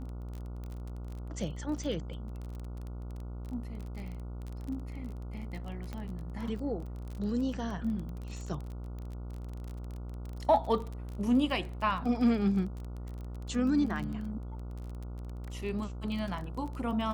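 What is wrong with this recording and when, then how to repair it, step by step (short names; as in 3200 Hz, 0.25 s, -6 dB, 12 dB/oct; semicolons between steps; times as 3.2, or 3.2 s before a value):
buzz 60 Hz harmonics 24 -40 dBFS
crackle 26/s -37 dBFS
5.93 pop -26 dBFS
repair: de-click; de-hum 60 Hz, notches 24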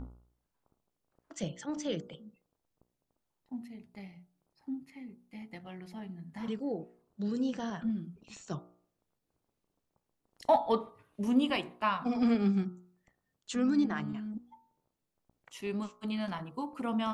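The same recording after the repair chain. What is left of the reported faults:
5.93 pop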